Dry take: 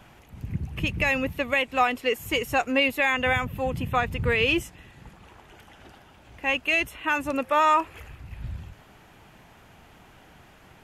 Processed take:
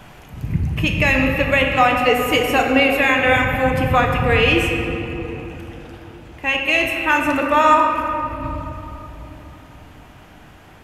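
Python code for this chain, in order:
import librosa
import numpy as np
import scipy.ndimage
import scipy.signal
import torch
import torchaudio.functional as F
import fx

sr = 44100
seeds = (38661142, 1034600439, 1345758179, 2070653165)

p1 = fx.rider(x, sr, range_db=10, speed_s=0.5)
p2 = x + (p1 * librosa.db_to_amplitude(-0.5))
y = fx.room_shoebox(p2, sr, seeds[0], volume_m3=200.0, walls='hard', distance_m=0.44)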